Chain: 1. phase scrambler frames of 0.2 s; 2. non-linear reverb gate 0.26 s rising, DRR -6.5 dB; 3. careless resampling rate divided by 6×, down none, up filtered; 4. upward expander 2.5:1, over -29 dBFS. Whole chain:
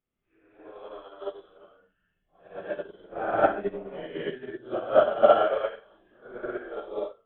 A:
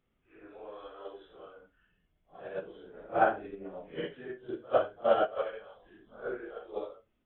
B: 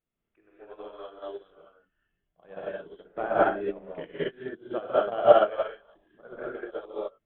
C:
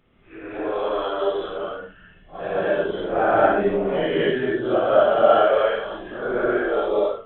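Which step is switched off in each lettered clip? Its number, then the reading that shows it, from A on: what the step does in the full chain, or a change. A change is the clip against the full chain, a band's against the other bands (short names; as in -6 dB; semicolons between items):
2, momentary loudness spread change -3 LU; 1, crest factor change +4.0 dB; 4, 1 kHz band -4.0 dB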